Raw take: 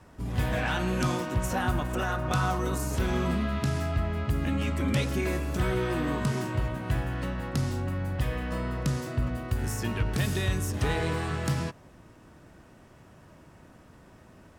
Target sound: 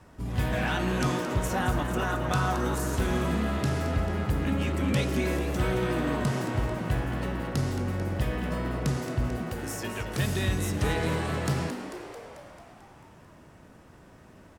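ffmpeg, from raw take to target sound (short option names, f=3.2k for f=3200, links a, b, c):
-filter_complex "[0:a]asettb=1/sr,asplit=3[a][b][c];[a]atrim=end=9.434[d];[b]atrim=start=9.43:end=10.18,asetpts=PTS-STARTPTS,afade=t=in:d=0.004:c=qsin,afade=t=out:st=0.746:d=0.004:c=qsin,lowshelf=f=210:g=-11[e];[c]atrim=start=10.176[f];[d][e]acrossfade=d=0.004:c1=hsin:c2=qsin[g];[g][f]acrossfade=d=0.004:c1=qsin:c2=hsin,asplit=2[h][i];[i]asplit=8[j][k][l][m][n][o][p][q];[j]adelay=221,afreqshift=110,volume=-10dB[r];[k]adelay=442,afreqshift=220,volume=-14dB[s];[l]adelay=663,afreqshift=330,volume=-18dB[t];[m]adelay=884,afreqshift=440,volume=-22dB[u];[n]adelay=1105,afreqshift=550,volume=-26.1dB[v];[o]adelay=1326,afreqshift=660,volume=-30.1dB[w];[p]adelay=1547,afreqshift=770,volume=-34.1dB[x];[q]adelay=1768,afreqshift=880,volume=-38.1dB[y];[r][s][t][u][v][w][x][y]amix=inputs=8:normalize=0[z];[h][z]amix=inputs=2:normalize=0"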